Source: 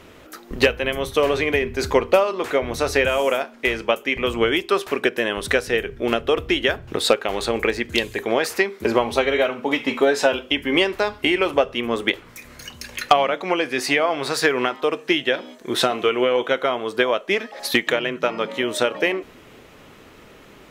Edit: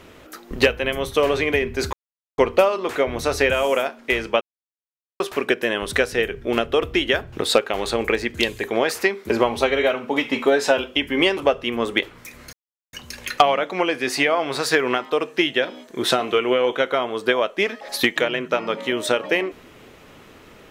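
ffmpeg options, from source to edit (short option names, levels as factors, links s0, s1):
-filter_complex "[0:a]asplit=6[s0][s1][s2][s3][s4][s5];[s0]atrim=end=1.93,asetpts=PTS-STARTPTS,afade=t=out:st=1.926:d=0.004:c=hsin,apad=pad_dur=0.45[s6];[s1]atrim=start=1.93:end=3.96,asetpts=PTS-STARTPTS,afade=t=in:d=0.004:c=hsin,afade=t=out:st=2.026:d=0.004:c=hsin[s7];[s2]atrim=start=3.96:end=4.75,asetpts=PTS-STARTPTS,volume=0[s8];[s3]atrim=start=4.75:end=10.922,asetpts=PTS-STARTPTS,afade=t=in:d=0.004:c=hsin[s9];[s4]atrim=start=11.478:end=12.64,asetpts=PTS-STARTPTS,afade=t=out:st=1.158:d=0.004:c=hsin,apad=pad_dur=0.4[s10];[s5]atrim=start=12.64,asetpts=PTS-STARTPTS,afade=t=in:d=0.004:c=hsin[s11];[s6][s7][s8][s9]concat=n=4:v=0:a=1[s12];[s10][s11]concat=n=2:v=0:a=1[s13];[s12][s13]acrossfade=d=0.004:c1=hsin:c2=hsin"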